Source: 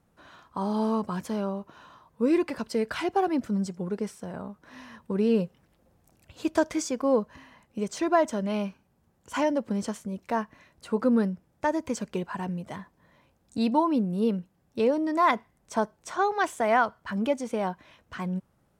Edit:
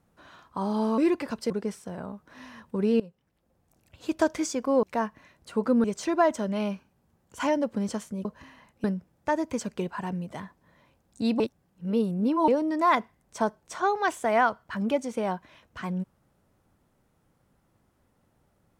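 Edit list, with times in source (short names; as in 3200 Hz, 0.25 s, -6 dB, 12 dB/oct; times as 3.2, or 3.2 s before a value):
0.98–2.26 cut
2.78–3.86 cut
5.36–6.6 fade in, from -19.5 dB
7.19–7.78 swap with 10.19–11.2
13.76–14.84 reverse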